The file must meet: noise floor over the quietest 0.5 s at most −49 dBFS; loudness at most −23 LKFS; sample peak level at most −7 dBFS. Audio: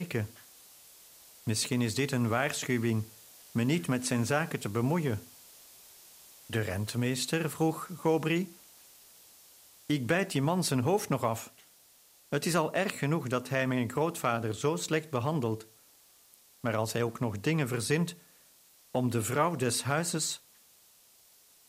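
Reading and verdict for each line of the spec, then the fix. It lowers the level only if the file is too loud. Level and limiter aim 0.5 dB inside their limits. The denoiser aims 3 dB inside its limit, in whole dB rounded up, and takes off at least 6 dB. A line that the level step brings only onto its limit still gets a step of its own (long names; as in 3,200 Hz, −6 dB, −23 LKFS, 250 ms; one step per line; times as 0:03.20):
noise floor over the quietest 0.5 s −61 dBFS: in spec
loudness −31.0 LKFS: in spec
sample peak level −13.5 dBFS: in spec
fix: no processing needed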